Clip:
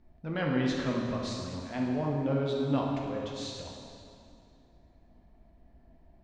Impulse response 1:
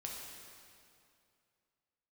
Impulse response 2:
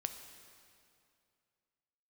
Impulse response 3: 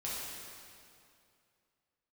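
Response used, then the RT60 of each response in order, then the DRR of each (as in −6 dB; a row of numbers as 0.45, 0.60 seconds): 1; 2.5, 2.4, 2.5 seconds; −2.0, 7.0, −8.0 decibels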